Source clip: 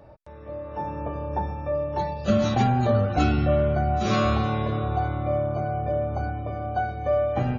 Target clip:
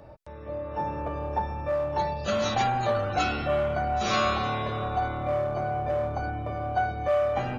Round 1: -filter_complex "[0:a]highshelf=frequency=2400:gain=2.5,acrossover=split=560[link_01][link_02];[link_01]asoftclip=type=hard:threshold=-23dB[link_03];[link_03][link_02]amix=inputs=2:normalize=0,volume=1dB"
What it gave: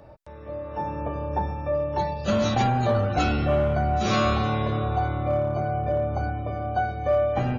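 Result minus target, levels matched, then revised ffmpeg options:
hard clipping: distortion −7 dB
-filter_complex "[0:a]highshelf=frequency=2400:gain=2.5,acrossover=split=560[link_01][link_02];[link_01]asoftclip=type=hard:threshold=-33.5dB[link_03];[link_03][link_02]amix=inputs=2:normalize=0,volume=1dB"

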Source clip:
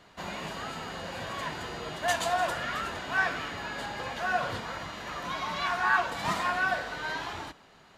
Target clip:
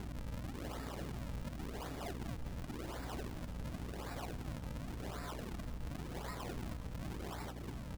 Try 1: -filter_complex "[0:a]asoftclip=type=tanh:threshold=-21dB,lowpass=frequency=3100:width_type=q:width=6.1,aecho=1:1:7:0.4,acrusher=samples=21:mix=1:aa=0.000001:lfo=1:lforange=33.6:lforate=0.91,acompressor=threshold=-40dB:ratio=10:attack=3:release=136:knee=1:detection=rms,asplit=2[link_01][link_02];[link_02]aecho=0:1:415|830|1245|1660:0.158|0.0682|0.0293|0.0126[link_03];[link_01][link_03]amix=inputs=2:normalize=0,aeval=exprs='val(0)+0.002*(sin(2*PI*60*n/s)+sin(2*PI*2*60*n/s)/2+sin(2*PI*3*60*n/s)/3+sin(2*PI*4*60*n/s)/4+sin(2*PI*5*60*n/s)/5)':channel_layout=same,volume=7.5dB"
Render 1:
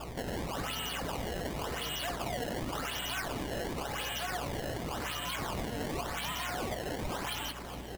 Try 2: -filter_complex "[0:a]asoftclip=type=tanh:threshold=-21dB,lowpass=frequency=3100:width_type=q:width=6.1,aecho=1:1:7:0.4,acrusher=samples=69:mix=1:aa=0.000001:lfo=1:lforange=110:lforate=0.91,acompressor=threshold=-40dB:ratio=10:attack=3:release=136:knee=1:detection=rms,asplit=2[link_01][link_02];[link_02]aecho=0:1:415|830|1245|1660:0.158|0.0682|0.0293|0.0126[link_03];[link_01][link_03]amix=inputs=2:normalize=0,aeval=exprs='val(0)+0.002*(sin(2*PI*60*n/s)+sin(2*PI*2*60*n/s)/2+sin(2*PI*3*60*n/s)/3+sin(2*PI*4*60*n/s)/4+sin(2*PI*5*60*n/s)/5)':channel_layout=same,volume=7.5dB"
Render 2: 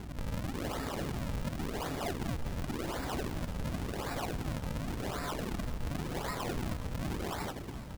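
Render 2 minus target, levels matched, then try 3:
downward compressor: peak gain reduction −8.5 dB
-filter_complex "[0:a]asoftclip=type=tanh:threshold=-21dB,lowpass=frequency=3100:width_type=q:width=6.1,aecho=1:1:7:0.4,acrusher=samples=69:mix=1:aa=0.000001:lfo=1:lforange=110:lforate=0.91,acompressor=threshold=-49.5dB:ratio=10:attack=3:release=136:knee=1:detection=rms,asplit=2[link_01][link_02];[link_02]aecho=0:1:415|830|1245|1660:0.158|0.0682|0.0293|0.0126[link_03];[link_01][link_03]amix=inputs=2:normalize=0,aeval=exprs='val(0)+0.002*(sin(2*PI*60*n/s)+sin(2*PI*2*60*n/s)/2+sin(2*PI*3*60*n/s)/3+sin(2*PI*4*60*n/s)/4+sin(2*PI*5*60*n/s)/5)':channel_layout=same,volume=7.5dB"

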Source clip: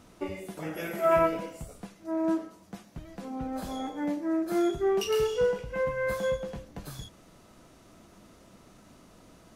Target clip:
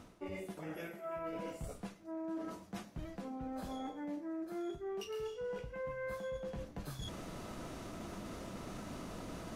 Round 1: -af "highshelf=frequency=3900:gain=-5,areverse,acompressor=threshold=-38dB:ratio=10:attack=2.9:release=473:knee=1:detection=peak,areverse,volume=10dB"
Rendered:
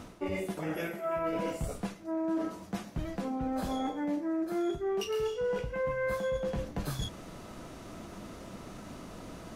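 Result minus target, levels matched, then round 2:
downward compressor: peak gain reduction −9.5 dB
-af "highshelf=frequency=3900:gain=-5,areverse,acompressor=threshold=-48.5dB:ratio=10:attack=2.9:release=473:knee=1:detection=peak,areverse,volume=10dB"

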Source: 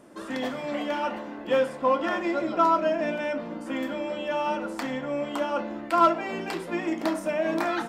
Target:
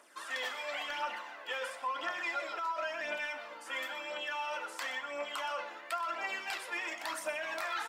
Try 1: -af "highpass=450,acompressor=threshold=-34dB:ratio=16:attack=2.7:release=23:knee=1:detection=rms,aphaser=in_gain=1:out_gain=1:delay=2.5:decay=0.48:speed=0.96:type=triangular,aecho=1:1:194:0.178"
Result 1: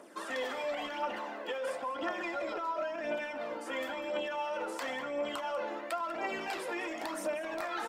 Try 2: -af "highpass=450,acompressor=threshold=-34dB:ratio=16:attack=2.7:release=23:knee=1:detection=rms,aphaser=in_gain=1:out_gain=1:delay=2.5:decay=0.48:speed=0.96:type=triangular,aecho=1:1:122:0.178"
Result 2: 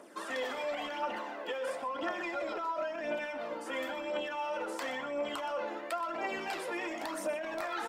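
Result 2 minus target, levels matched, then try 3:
500 Hz band +6.0 dB
-af "highpass=1200,acompressor=threshold=-34dB:ratio=16:attack=2.7:release=23:knee=1:detection=rms,aphaser=in_gain=1:out_gain=1:delay=2.5:decay=0.48:speed=0.96:type=triangular,aecho=1:1:122:0.178"

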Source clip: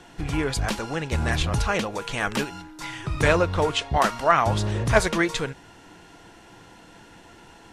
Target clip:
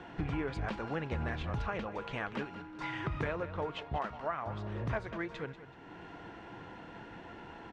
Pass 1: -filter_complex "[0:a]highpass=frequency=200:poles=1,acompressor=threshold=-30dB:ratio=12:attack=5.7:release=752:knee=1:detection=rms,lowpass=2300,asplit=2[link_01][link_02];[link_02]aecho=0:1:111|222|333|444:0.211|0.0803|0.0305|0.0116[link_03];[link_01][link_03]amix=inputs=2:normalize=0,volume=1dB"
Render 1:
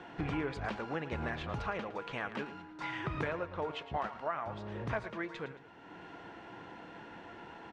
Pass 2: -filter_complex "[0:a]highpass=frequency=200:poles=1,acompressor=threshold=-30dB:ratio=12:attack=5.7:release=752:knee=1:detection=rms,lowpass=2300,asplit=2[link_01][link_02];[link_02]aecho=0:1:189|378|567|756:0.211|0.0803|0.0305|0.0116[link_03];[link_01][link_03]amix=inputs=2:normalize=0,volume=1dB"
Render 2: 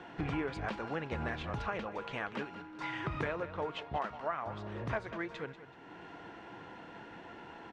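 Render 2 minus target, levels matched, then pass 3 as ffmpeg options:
125 Hz band −3.0 dB
-filter_complex "[0:a]highpass=frequency=54:poles=1,acompressor=threshold=-30dB:ratio=12:attack=5.7:release=752:knee=1:detection=rms,lowpass=2300,asplit=2[link_01][link_02];[link_02]aecho=0:1:189|378|567|756:0.211|0.0803|0.0305|0.0116[link_03];[link_01][link_03]amix=inputs=2:normalize=0,volume=1dB"

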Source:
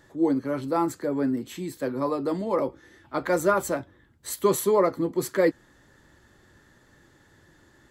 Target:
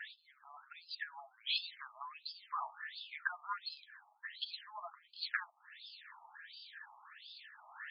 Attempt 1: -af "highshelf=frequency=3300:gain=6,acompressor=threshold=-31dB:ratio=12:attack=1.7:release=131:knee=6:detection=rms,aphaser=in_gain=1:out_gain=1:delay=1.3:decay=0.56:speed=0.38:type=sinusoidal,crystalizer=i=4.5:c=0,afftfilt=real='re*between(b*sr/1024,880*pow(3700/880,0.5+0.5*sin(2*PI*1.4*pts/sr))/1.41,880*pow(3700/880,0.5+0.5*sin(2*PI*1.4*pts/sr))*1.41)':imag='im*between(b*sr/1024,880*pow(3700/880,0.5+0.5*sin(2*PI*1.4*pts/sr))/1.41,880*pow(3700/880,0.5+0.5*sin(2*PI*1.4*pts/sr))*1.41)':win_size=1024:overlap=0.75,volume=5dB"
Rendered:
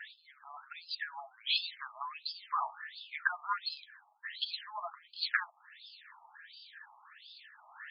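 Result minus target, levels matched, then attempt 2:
downward compressor: peak gain reduction −6.5 dB
-af "highshelf=frequency=3300:gain=6,acompressor=threshold=-38dB:ratio=12:attack=1.7:release=131:knee=6:detection=rms,aphaser=in_gain=1:out_gain=1:delay=1.3:decay=0.56:speed=0.38:type=sinusoidal,crystalizer=i=4.5:c=0,afftfilt=real='re*between(b*sr/1024,880*pow(3700/880,0.5+0.5*sin(2*PI*1.4*pts/sr))/1.41,880*pow(3700/880,0.5+0.5*sin(2*PI*1.4*pts/sr))*1.41)':imag='im*between(b*sr/1024,880*pow(3700/880,0.5+0.5*sin(2*PI*1.4*pts/sr))/1.41,880*pow(3700/880,0.5+0.5*sin(2*PI*1.4*pts/sr))*1.41)':win_size=1024:overlap=0.75,volume=5dB"

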